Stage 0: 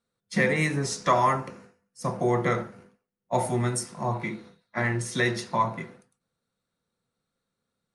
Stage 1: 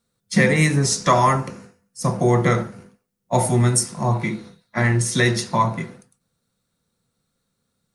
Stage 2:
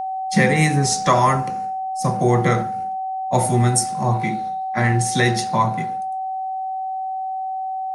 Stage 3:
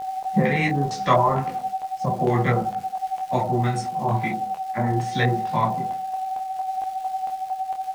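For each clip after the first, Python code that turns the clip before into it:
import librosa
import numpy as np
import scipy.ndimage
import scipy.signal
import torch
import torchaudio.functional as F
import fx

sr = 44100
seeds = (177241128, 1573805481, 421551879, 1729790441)

y1 = fx.bass_treble(x, sr, bass_db=6, treble_db=7)
y1 = F.gain(torch.from_numpy(y1), 5.0).numpy()
y2 = y1 + 10.0 ** (-23.0 / 20.0) * np.sin(2.0 * np.pi * 760.0 * np.arange(len(y1)) / sr)
y3 = fx.filter_lfo_lowpass(y2, sr, shape='square', hz=2.2, low_hz=820.0, high_hz=3100.0, q=1.2)
y3 = fx.dmg_crackle(y3, sr, seeds[0], per_s=590.0, level_db=-33.0)
y3 = fx.detune_double(y3, sr, cents=25)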